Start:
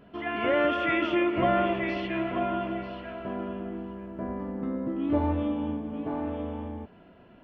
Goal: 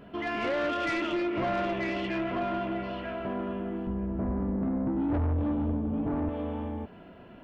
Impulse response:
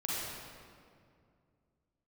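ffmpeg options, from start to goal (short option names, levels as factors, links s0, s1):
-filter_complex "[0:a]asettb=1/sr,asplit=3[s0][s1][s2];[s0]atrim=end=3.874[s3];[s1]atrim=start=3.87:end=6.29,asetpts=PTS-STARTPTS,afade=t=in:d=0.004:c=qsin,afade=t=out:st=2.416:d=0.004:c=qsin,aemphasis=mode=reproduction:type=riaa[s4];[s2]atrim=start=6.286[s5];[s3][s4]acrossfade=d=0.004:c1=hsin:c2=qsin[s6];[s6][s5]acrossfade=d=0.004:c1=qsin:c2=hsin,acompressor=threshold=0.0158:ratio=1.5,asoftclip=type=tanh:threshold=0.0355,volume=1.68"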